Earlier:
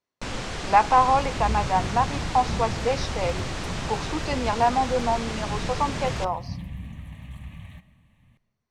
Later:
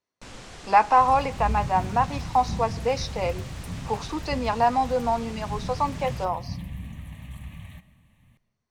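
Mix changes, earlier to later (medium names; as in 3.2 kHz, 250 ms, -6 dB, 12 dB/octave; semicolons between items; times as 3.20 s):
first sound -11.5 dB; master: add treble shelf 9.4 kHz +11.5 dB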